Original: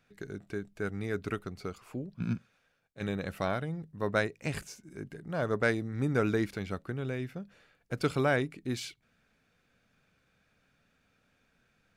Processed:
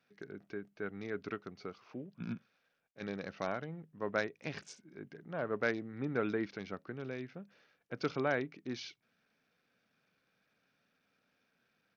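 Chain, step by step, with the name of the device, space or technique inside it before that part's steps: Bluetooth headset (HPF 180 Hz 12 dB/oct; downsampling 16000 Hz; gain -5 dB; SBC 64 kbps 48000 Hz)

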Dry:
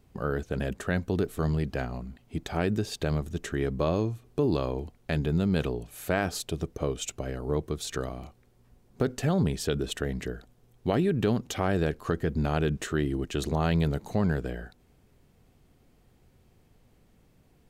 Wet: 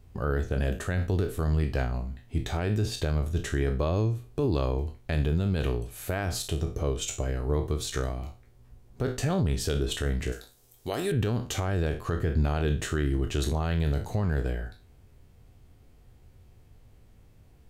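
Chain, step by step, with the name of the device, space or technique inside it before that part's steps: spectral trails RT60 0.33 s; car stereo with a boomy subwoofer (resonant low shelf 130 Hz +6.5 dB, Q 1.5; limiter -17 dBFS, peak gain reduction 6.5 dB); 10.32–11.12 tone controls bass -11 dB, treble +15 dB

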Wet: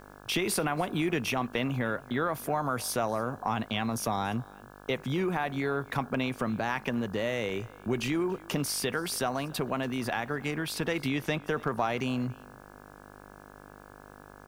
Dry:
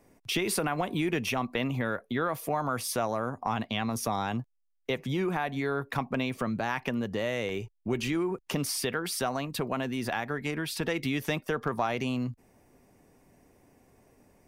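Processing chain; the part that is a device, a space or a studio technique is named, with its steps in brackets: video cassette with head-switching buzz (buzz 50 Hz, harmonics 34, -51 dBFS -1 dB/oct; white noise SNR 36 dB); 11.08–11.49 high shelf 8200 Hz -7.5 dB; echo 0.284 s -23.5 dB

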